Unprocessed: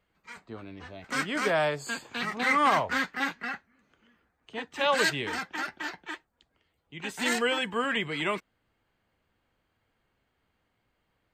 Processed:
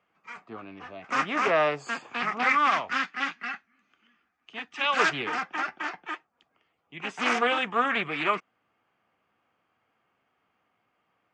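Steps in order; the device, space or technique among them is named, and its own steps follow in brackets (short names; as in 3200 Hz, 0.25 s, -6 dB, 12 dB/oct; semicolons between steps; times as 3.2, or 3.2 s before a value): 2.49–4.97 graphic EQ 125/500/1000/4000 Hz -9/-10/-6/+4 dB; full-range speaker at full volume (Doppler distortion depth 0.34 ms; speaker cabinet 160–6400 Hz, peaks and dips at 740 Hz +6 dB, 1200 Hz +9 dB, 2500 Hz +5 dB, 4100 Hz -9 dB)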